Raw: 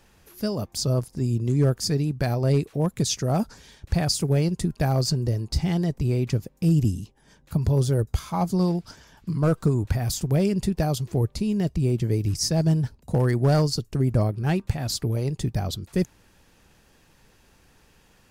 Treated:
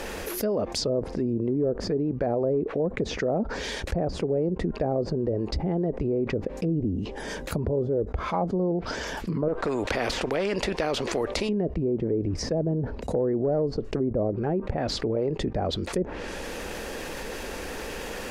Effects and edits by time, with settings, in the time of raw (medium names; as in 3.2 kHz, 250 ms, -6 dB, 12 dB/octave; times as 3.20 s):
9.48–11.49 s: spectrum-flattening compressor 2:1
whole clip: low-pass that closes with the level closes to 630 Hz, closed at -19 dBFS; ten-band graphic EQ 125 Hz -11 dB, 250 Hz +3 dB, 500 Hz +10 dB, 2 kHz +4 dB; level flattener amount 70%; trim -8 dB